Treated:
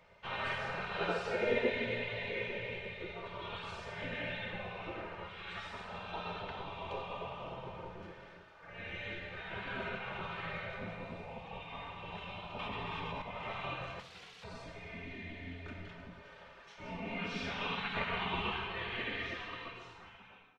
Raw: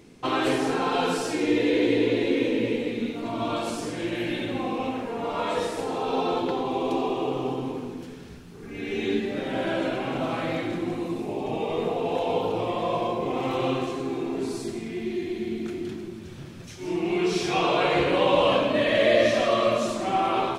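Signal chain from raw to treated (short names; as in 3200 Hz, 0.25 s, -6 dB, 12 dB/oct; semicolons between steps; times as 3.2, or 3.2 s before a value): ending faded out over 2.34 s; resonator 83 Hz, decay 1.7 s, harmonics all, mix 70%; dynamic EQ 800 Hz, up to -8 dB, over -48 dBFS, Q 0.85; 13.99–14.44 wrapped overs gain 43 dB; LPF 2100 Hz 12 dB/oct; comb 3.3 ms, depth 81%; spectral gate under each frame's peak -15 dB weak; 0.96–1.7 bell 480 Hz +11 dB 1.4 oct; reverb RT60 1.3 s, pre-delay 4 ms, DRR 9 dB; 12.59–13.22 fast leveller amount 100%; gain +6.5 dB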